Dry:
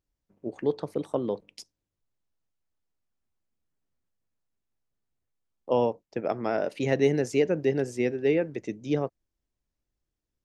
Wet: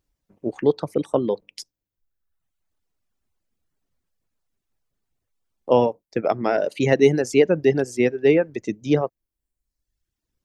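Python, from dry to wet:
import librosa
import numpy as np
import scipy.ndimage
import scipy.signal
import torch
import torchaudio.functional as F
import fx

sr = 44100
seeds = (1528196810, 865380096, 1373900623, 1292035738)

y = fx.dereverb_blind(x, sr, rt60_s=0.99)
y = y * 10.0 ** (8.0 / 20.0)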